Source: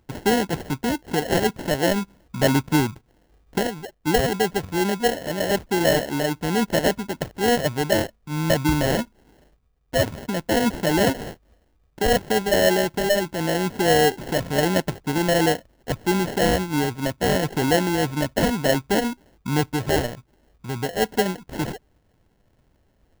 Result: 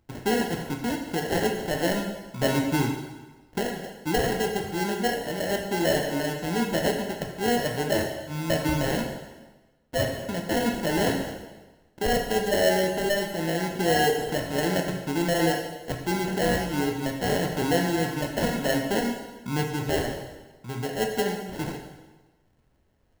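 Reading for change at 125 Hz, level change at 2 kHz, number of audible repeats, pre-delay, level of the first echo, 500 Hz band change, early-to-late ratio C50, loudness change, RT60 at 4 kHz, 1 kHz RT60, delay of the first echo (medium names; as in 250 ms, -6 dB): -4.5 dB, -3.5 dB, no echo, 5 ms, no echo, -4.0 dB, 5.0 dB, -4.0 dB, 1.1 s, 1.2 s, no echo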